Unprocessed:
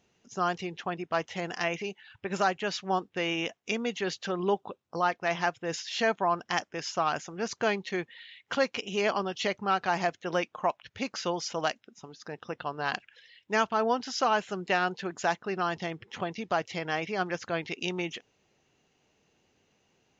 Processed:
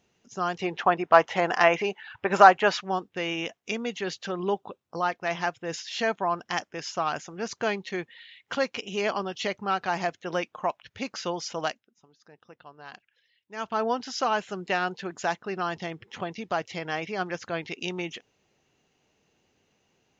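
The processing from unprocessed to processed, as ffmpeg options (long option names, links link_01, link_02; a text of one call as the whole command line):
ffmpeg -i in.wav -filter_complex "[0:a]asettb=1/sr,asplit=3[link_01][link_02][link_03];[link_01]atrim=end=0.614[link_04];[link_02]atrim=start=0.61:end=2.81,asetpts=PTS-STARTPTS,afade=type=in:duration=0.004:curve=qsin,afade=type=out:start_time=2.196:duration=0.004:curve=qsin,equalizer=frequency=940:width=0.45:gain=14[link_05];[link_03]atrim=start=2.806[link_06];[link_04][link_05]acrossfade=duration=0.004:curve1=hsin:curve2=qsin[link_07];[link_07][link_06]acrossfade=duration=0.004:curve1=qsin:curve2=hsin,asplit=3[link_08][link_09][link_10];[link_08]atrim=end=11.84,asetpts=PTS-STARTPTS,afade=type=out:start_time=11.67:duration=0.17:silence=0.211349[link_11];[link_09]atrim=start=11.84:end=13.56,asetpts=PTS-STARTPTS,volume=-13.5dB[link_12];[link_10]atrim=start=13.56,asetpts=PTS-STARTPTS,afade=type=in:duration=0.17:silence=0.211349[link_13];[link_11][link_12][link_13]concat=n=3:v=0:a=1" out.wav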